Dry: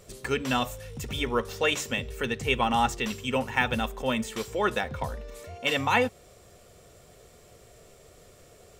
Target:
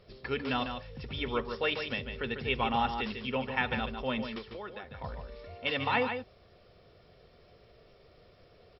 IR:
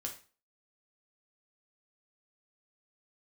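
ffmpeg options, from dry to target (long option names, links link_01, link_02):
-filter_complex "[0:a]asettb=1/sr,asplit=3[link_01][link_02][link_03];[link_01]atrim=end=4.384[link_04];[link_02]atrim=start=4.38:end=5.04,asetpts=PTS-STARTPTS,afade=type=in:duration=0.004:curve=qsin,afade=type=out:start_time=0.656:duration=0.004:curve=qsin,acompressor=threshold=-36dB:ratio=4[link_05];[link_03]atrim=start=5.036[link_06];[link_04][link_05]acrossfade=duration=0.004:curve1=hsin:curve2=qsin[link_07];[link_07][link_06]acrossfade=duration=0.004:curve1=qsin:curve2=hsin,asplit=2[link_08][link_09];[link_09]aecho=0:1:148:0.422[link_10];[link_08][link_10]amix=inputs=2:normalize=0,volume=-5.5dB" -ar 44100 -c:a mp2 -b:a 48k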